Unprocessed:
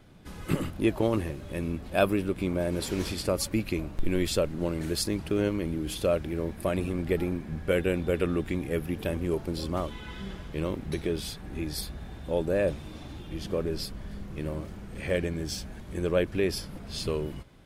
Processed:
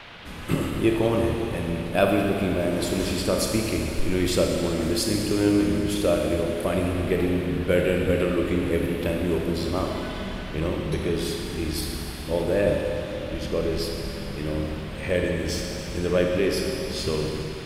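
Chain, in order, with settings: Schroeder reverb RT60 2.8 s, combs from 26 ms, DRR 0.5 dB; band noise 420–3500 Hz -47 dBFS; trim +2.5 dB

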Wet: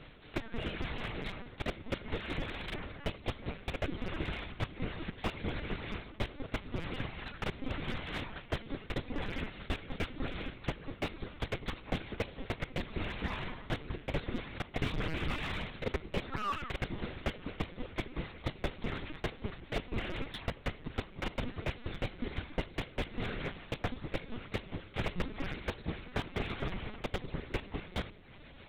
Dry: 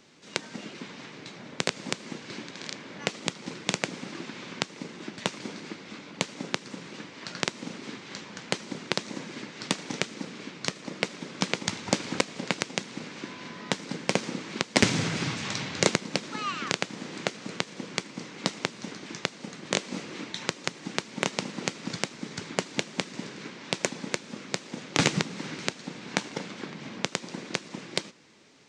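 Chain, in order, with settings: reverb removal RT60 0.53 s; reverse; compression 6:1, threshold -39 dBFS, peak gain reduction 22 dB; reverse; Chebyshev shaper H 3 -36 dB, 7 -44 dB, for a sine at -17.5 dBFS; on a send at -14.5 dB: reverberation RT60 1.1 s, pre-delay 7 ms; on the sum: LPC vocoder at 8 kHz pitch kept; slew-rate limiter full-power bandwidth 14 Hz; trim +8.5 dB

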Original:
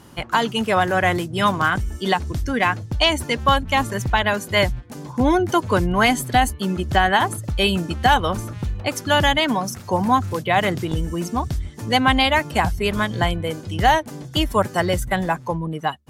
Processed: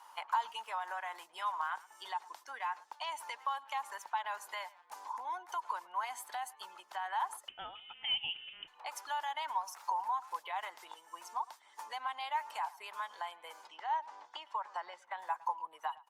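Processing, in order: peak limiter -12 dBFS, peak gain reduction 8.5 dB; compression 10:1, threshold -27 dBFS, peak gain reduction 11.5 dB; ladder high-pass 860 Hz, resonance 75%; 7.48–8.68 s: frequency inversion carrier 3.9 kHz; 13.67–15.19 s: distance through air 140 m; speakerphone echo 110 ms, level -20 dB; Opus 48 kbps 48 kHz

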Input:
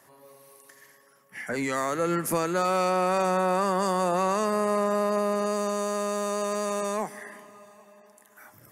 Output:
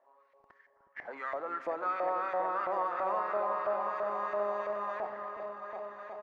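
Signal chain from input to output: high-pass 310 Hz 12 dB/octave; de-hum 433.6 Hz, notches 20; in parallel at -11 dB: Schmitt trigger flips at -39.5 dBFS; on the sum: tempo 1.4×; LFO band-pass saw up 3 Hz 620–1900 Hz; distance through air 180 m; delay with an opening low-pass 365 ms, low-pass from 400 Hz, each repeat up 2 oct, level -3 dB; on a send at -18.5 dB: reverberation RT60 2.6 s, pre-delay 35 ms; on the sum: trim -2.5 dB

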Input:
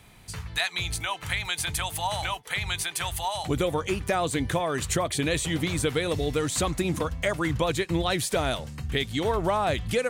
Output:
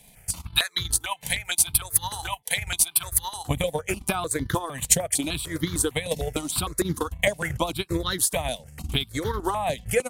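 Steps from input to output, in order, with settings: peaking EQ 12 kHz +10 dB 1.1 oct; transient shaper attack +10 dB, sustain -11 dB; stepped phaser 6.6 Hz 340–2500 Hz

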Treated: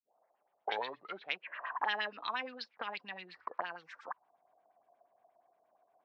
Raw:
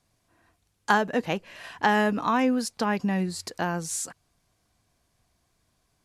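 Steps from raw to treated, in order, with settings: tape start-up on the opening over 1.45 s; dynamic bell 5.3 kHz, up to +7 dB, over -54 dBFS, Q 3.8; LFO low-pass sine 8.5 Hz 570–3500 Hz; three-band isolator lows -14 dB, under 170 Hz, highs -13 dB, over 3.2 kHz; auto-wah 700–4100 Hz, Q 4.5, up, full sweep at -23.5 dBFS; trim +9 dB

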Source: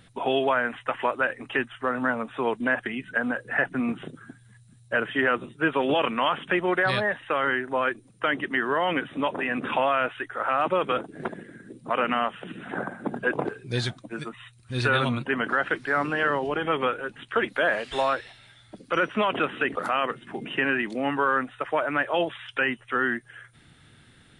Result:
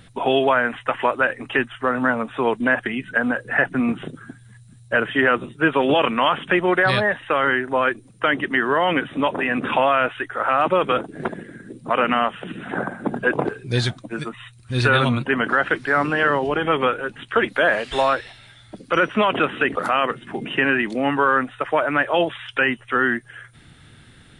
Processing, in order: bass shelf 93 Hz +5 dB; trim +5.5 dB

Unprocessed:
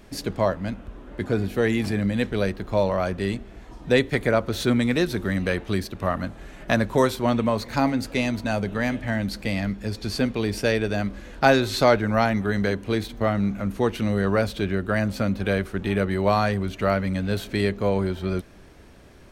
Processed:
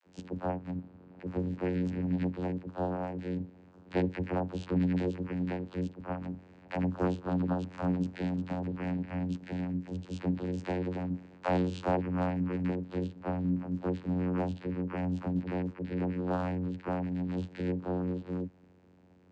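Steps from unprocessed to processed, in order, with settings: phase dispersion lows, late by 66 ms, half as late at 480 Hz; vocoder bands 8, saw 90.6 Hz; trim -8 dB

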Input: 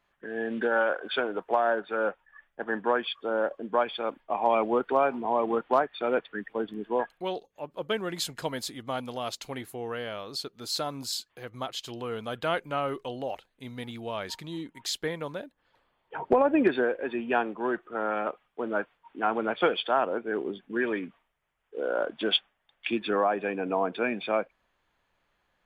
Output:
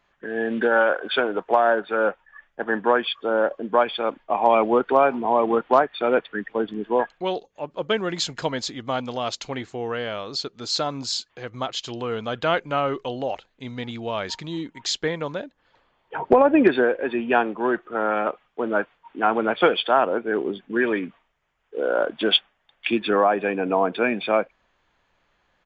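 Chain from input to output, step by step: resampled via 16 kHz; trim +6.5 dB

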